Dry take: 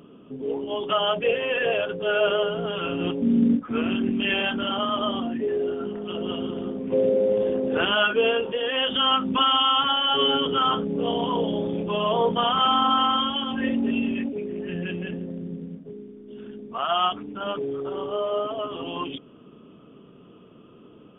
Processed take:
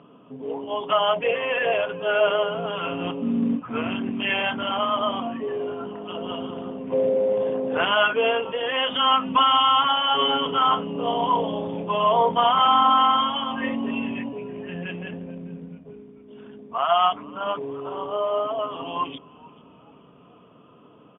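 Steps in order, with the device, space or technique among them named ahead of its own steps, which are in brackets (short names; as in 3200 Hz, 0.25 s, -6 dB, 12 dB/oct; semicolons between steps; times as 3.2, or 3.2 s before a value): frequency-shifting delay pedal into a guitar cabinet (frequency-shifting echo 0.435 s, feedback 49%, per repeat -110 Hz, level -22.5 dB; speaker cabinet 110–3400 Hz, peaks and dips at 210 Hz -5 dB, 360 Hz -8 dB, 700 Hz +5 dB, 1000 Hz +8 dB); dynamic EQ 2100 Hz, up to +7 dB, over -47 dBFS, Q 6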